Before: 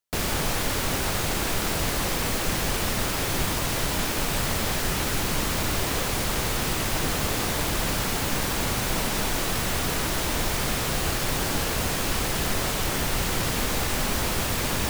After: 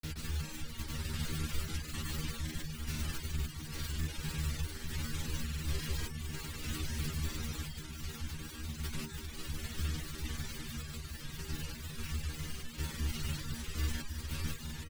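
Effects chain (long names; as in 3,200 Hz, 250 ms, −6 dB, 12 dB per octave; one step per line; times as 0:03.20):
on a send: ambience of single reflections 13 ms −8 dB, 71 ms −10.5 dB
on the sum: sample-and-hold tremolo
high-shelf EQ 4,300 Hz −7.5 dB
granular cloud, pitch spread up and down by 0 semitones
guitar amp tone stack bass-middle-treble 6-0-2
stiff-string resonator 76 Hz, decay 0.26 s, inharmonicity 0.002
reverb reduction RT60 0.54 s
level +16 dB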